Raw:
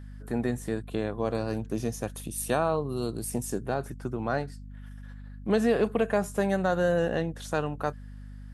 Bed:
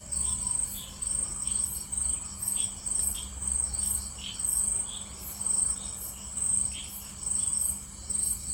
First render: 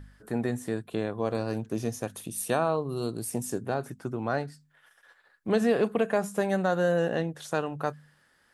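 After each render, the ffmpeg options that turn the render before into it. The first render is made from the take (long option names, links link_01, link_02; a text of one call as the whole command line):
ffmpeg -i in.wav -af "bandreject=frequency=50:width_type=h:width=4,bandreject=frequency=100:width_type=h:width=4,bandreject=frequency=150:width_type=h:width=4,bandreject=frequency=200:width_type=h:width=4,bandreject=frequency=250:width_type=h:width=4" out.wav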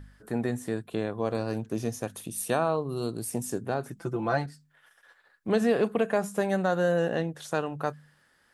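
ffmpeg -i in.wav -filter_complex "[0:a]asettb=1/sr,asplit=3[link_01][link_02][link_03];[link_01]atrim=end=3.964[link_04];[link_02]atrim=start=3.96:end=4.46,asetpts=PTS-STARTPTS,afade=type=in:duration=0.004:curve=qsin,afade=type=out:start_time=0.496:duration=0.004:curve=qsin,aecho=1:1:5.9:0.84,atrim=end_sample=22050[link_05];[link_03]atrim=start=4.456[link_06];[link_04][link_05]acrossfade=duration=0.004:curve1=hsin:curve2=qsin[link_07];[link_07][link_06]acrossfade=duration=0.004:curve1=qsin:curve2=hsin" out.wav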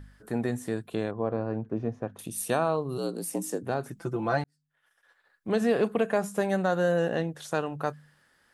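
ffmpeg -i in.wav -filter_complex "[0:a]asettb=1/sr,asplit=3[link_01][link_02][link_03];[link_01]atrim=end=1.114[link_04];[link_02]atrim=start=1.11:end=2.19,asetpts=PTS-STARTPTS,afade=type=in:duration=0.004:curve=qsin,afade=type=out:start_time=1.076:duration=0.004:curve=qsin,lowpass=1400[link_05];[link_03]atrim=start=2.186[link_06];[link_04][link_05]acrossfade=duration=0.004:curve1=hsin:curve2=qsin[link_07];[link_07][link_06]acrossfade=duration=0.004:curve1=qsin:curve2=hsin,asplit=3[link_08][link_09][link_10];[link_08]afade=type=out:start_time=2.97:duration=0.02[link_11];[link_09]afreqshift=64,afade=type=in:start_time=2.97:duration=0.02,afade=type=out:start_time=3.62:duration=0.02[link_12];[link_10]afade=type=in:start_time=3.62:duration=0.02[link_13];[link_11][link_12][link_13]amix=inputs=3:normalize=0,asplit=2[link_14][link_15];[link_14]atrim=end=4.44,asetpts=PTS-STARTPTS,afade=type=out:start_time=4.436:duration=0.004:curve=hsin[link_16];[link_15]atrim=start=4.44,asetpts=PTS-STARTPTS,afade=type=in:duration=1.33[link_17];[link_16][link_17]concat=n=2:v=0:a=1" out.wav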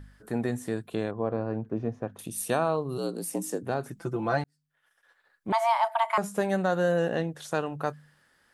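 ffmpeg -i in.wav -filter_complex "[0:a]asettb=1/sr,asplit=3[link_01][link_02][link_03];[link_01]atrim=end=5.524[link_04];[link_02]atrim=start=5.52:end=6.18,asetpts=PTS-STARTPTS,afade=type=in:duration=0.004:curve=qsin,afade=type=out:start_time=0.656:duration=0.004:curve=qsin,afreqshift=460[link_05];[link_03]atrim=start=6.176[link_06];[link_04][link_05]acrossfade=duration=0.004:curve1=hsin:curve2=qsin[link_07];[link_07][link_06]acrossfade=duration=0.004:curve1=qsin:curve2=hsin" out.wav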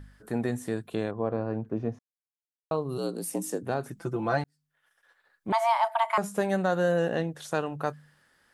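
ffmpeg -i in.wav -filter_complex "[0:a]asplit=3[link_01][link_02][link_03];[link_01]atrim=end=1.99,asetpts=PTS-STARTPTS,afade=type=out:start_time=1.986:duration=0.004:curve=hsin[link_04];[link_02]atrim=start=1.99:end=2.71,asetpts=PTS-STARTPTS,volume=0[link_05];[link_03]atrim=start=2.71,asetpts=PTS-STARTPTS,afade=type=in:duration=0.004:curve=hsin[link_06];[link_04][link_05][link_06]concat=n=3:v=0:a=1" out.wav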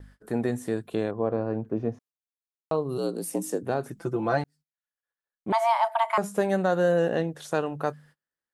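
ffmpeg -i in.wav -af "agate=range=-30dB:threshold=-53dB:ratio=16:detection=peak,equalizer=frequency=420:width_type=o:width=1.6:gain=3.5" out.wav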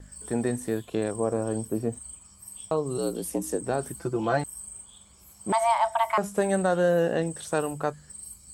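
ffmpeg -i in.wav -i bed.wav -filter_complex "[1:a]volume=-13.5dB[link_01];[0:a][link_01]amix=inputs=2:normalize=0" out.wav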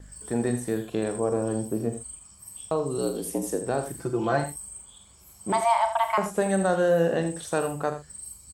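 ffmpeg -i in.wav -filter_complex "[0:a]asplit=2[link_01][link_02];[link_02]adelay=42,volume=-11dB[link_03];[link_01][link_03]amix=inputs=2:normalize=0,aecho=1:1:82:0.299" out.wav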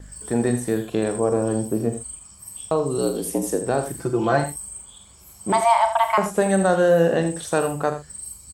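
ffmpeg -i in.wav -af "volume=5dB" out.wav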